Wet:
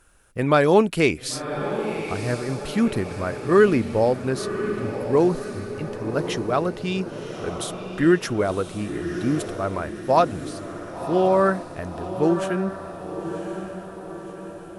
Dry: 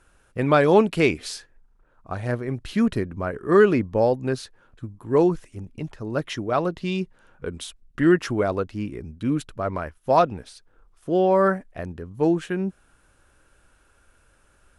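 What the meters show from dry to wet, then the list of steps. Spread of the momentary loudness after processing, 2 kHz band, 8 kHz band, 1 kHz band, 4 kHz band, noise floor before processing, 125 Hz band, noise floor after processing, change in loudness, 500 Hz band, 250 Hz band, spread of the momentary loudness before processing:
15 LU, +1.0 dB, +6.0 dB, +1.0 dB, +2.5 dB, −61 dBFS, +1.0 dB, −39 dBFS, −0.5 dB, +0.5 dB, +0.5 dB, 18 LU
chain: high-shelf EQ 7,500 Hz +10 dB
feedback delay with all-pass diffusion 1,067 ms, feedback 53%, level −9 dB

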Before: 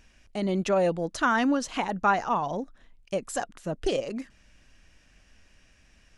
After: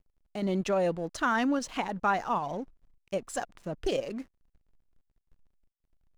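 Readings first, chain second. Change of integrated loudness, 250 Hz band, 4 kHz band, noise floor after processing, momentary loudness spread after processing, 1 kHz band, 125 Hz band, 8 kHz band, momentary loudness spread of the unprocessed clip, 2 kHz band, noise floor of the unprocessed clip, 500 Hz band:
−3.0 dB, −3.0 dB, −3.5 dB, −83 dBFS, 12 LU, −3.5 dB, −3.0 dB, −3.5 dB, 12 LU, −3.5 dB, −61 dBFS, −3.0 dB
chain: in parallel at −1 dB: output level in coarse steps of 9 dB
on the sum: slack as between gear wheels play −40.5 dBFS
level −7 dB

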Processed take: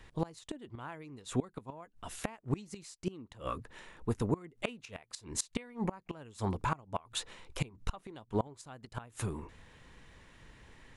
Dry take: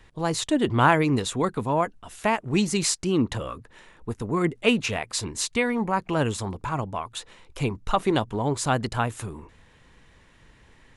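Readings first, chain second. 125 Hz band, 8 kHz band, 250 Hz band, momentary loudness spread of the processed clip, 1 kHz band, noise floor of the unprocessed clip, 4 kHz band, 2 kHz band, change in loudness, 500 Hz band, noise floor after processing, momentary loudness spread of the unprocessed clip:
−10.5 dB, −12.5 dB, −13.5 dB, 19 LU, −15.5 dB, −56 dBFS, −14.0 dB, −18.0 dB, −14.5 dB, −14.0 dB, −68 dBFS, 14 LU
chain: gate with flip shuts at −17 dBFS, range −25 dB
level −1.5 dB

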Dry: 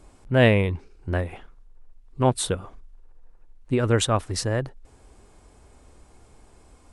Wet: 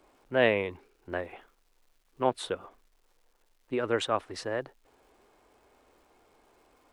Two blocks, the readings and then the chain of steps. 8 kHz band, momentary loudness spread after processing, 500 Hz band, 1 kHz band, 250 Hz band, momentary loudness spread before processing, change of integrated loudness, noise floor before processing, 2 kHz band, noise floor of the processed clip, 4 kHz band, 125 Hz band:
−16.0 dB, 13 LU, −5.0 dB, −4.0 dB, −10.0 dB, 13 LU, −7.0 dB, −54 dBFS, −4.5 dB, −69 dBFS, −7.0 dB, −20.0 dB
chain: three-way crossover with the lows and the highs turned down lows −18 dB, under 280 Hz, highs −14 dB, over 4,000 Hz
surface crackle 500 per second −56 dBFS
level −4 dB

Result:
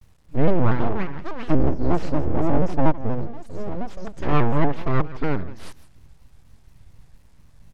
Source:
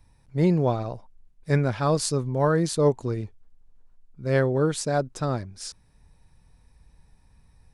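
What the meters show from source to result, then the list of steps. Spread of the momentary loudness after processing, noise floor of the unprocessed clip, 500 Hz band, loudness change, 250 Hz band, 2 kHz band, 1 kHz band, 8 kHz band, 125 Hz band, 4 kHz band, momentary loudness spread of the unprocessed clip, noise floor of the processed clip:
13 LU, −59 dBFS, −1.5 dB, 0.0 dB, +3.0 dB, +0.5 dB, +3.5 dB, below −15 dB, +0.5 dB, −7.0 dB, 15 LU, −52 dBFS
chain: delay with pitch and tempo change per echo 533 ms, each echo +6 semitones, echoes 2, each echo −6 dB
high-shelf EQ 9,200 Hz −9.5 dB
time-frequency box erased 0:01.53–0:04.07, 540–4,600 Hz
full-wave rectification
low-shelf EQ 250 Hz +7 dB
downward expander −45 dBFS
bit reduction 11 bits
single-tap delay 162 ms −17 dB
treble cut that deepens with the level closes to 2,600 Hz, closed at −19.5 dBFS
pitch modulation by a square or saw wave square 4.2 Hz, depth 160 cents
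level +2.5 dB

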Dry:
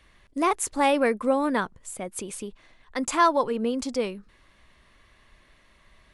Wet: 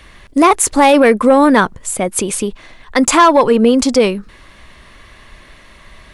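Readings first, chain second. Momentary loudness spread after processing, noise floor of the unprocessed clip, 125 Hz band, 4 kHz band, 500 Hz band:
11 LU, −60 dBFS, +16.5 dB, +14.5 dB, +14.0 dB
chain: soft clipping −14.5 dBFS, distortion −18 dB
boost into a limiter +18 dB
level −1 dB

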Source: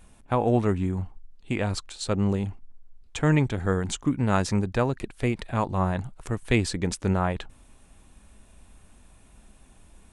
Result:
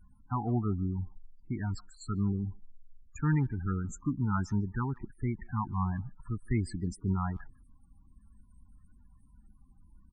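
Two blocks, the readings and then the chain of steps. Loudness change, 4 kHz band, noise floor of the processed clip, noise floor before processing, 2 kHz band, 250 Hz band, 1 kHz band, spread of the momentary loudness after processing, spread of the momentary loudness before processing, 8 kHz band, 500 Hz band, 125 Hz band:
−7.0 dB, below −20 dB, −61 dBFS, −55 dBFS, −12.0 dB, −6.5 dB, −8.5 dB, 9 LU, 10 LU, −14.5 dB, −16.5 dB, −4.5 dB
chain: phaser with its sweep stopped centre 1,300 Hz, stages 4
spectral peaks only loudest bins 16
far-end echo of a speakerphone 150 ms, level −25 dB
level −4 dB

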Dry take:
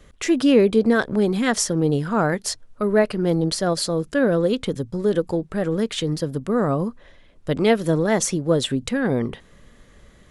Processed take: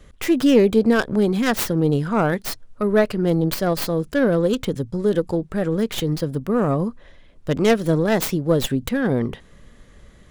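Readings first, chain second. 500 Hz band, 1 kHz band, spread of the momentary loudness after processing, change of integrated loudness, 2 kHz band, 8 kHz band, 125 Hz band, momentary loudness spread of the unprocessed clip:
+0.5 dB, +0.5 dB, 8 LU, +1.0 dB, 0.0 dB, −5.5 dB, +2.0 dB, 8 LU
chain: stylus tracing distortion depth 0.35 ms
low-shelf EQ 190 Hz +3.5 dB

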